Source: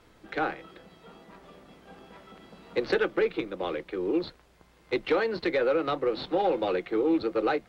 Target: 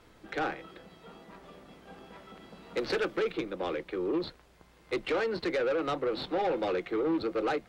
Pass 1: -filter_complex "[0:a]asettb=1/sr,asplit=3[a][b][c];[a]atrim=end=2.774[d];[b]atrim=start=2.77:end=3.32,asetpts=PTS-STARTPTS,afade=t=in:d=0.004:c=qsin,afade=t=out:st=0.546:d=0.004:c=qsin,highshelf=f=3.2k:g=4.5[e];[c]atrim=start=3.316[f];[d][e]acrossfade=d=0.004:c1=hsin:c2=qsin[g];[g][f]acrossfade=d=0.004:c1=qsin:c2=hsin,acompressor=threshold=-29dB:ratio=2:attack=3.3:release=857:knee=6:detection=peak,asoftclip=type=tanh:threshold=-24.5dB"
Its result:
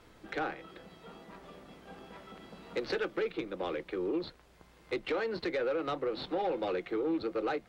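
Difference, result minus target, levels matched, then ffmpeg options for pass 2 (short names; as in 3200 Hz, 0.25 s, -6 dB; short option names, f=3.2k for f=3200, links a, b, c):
compressor: peak gain reduction +7 dB
-filter_complex "[0:a]asettb=1/sr,asplit=3[a][b][c];[a]atrim=end=2.774[d];[b]atrim=start=2.77:end=3.32,asetpts=PTS-STARTPTS,afade=t=in:d=0.004:c=qsin,afade=t=out:st=0.546:d=0.004:c=qsin,highshelf=f=3.2k:g=4.5[e];[c]atrim=start=3.316[f];[d][e]acrossfade=d=0.004:c1=hsin:c2=qsin[g];[g][f]acrossfade=d=0.004:c1=qsin:c2=hsin,asoftclip=type=tanh:threshold=-24.5dB"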